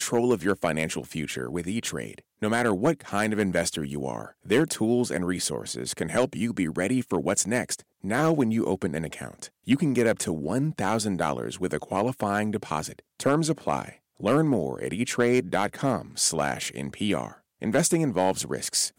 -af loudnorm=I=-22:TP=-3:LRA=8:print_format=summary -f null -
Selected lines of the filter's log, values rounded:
Input Integrated:    -26.5 LUFS
Input True Peak:     -10.1 dBTP
Input LRA:             1.4 LU
Input Threshold:     -36.6 LUFS